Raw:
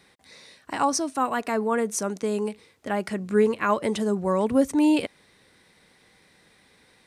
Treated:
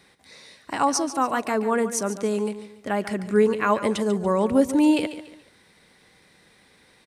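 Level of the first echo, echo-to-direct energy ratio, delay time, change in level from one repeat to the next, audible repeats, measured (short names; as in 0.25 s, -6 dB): -12.5 dB, -12.0 dB, 0.143 s, -9.5 dB, 3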